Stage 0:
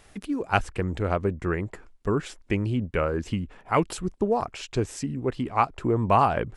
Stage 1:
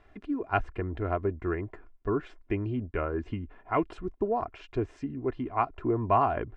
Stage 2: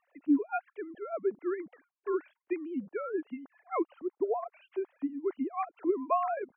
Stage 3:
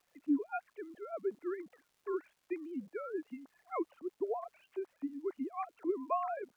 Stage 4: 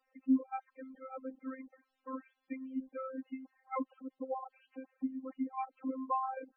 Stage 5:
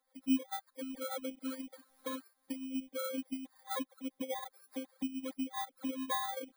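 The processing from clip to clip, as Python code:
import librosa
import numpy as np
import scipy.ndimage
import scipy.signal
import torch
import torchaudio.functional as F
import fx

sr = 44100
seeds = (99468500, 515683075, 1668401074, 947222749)

y1 = scipy.signal.sosfilt(scipy.signal.butter(2, 2000.0, 'lowpass', fs=sr, output='sos'), x)
y1 = y1 + 0.52 * np.pad(y1, (int(2.9 * sr / 1000.0), 0))[:len(y1)]
y1 = F.gain(torch.from_numpy(y1), -5.0).numpy()
y2 = fx.sine_speech(y1, sr)
y2 = F.gain(torch.from_numpy(y2), -3.0).numpy()
y3 = fx.dmg_crackle(y2, sr, seeds[0], per_s=590.0, level_db=-57.0)
y3 = F.gain(torch.from_numpy(y3), -5.5).numpy()
y4 = fx.robotise(y3, sr, hz=263.0)
y4 = fx.spec_topn(y4, sr, count=16)
y4 = F.gain(torch.from_numpy(y4), 3.0).numpy()
y5 = fx.bit_reversed(y4, sr, seeds[1], block=16)
y5 = fx.recorder_agc(y5, sr, target_db=-28.5, rise_db_per_s=30.0, max_gain_db=30)
y5 = F.gain(torch.from_numpy(y5), -2.0).numpy()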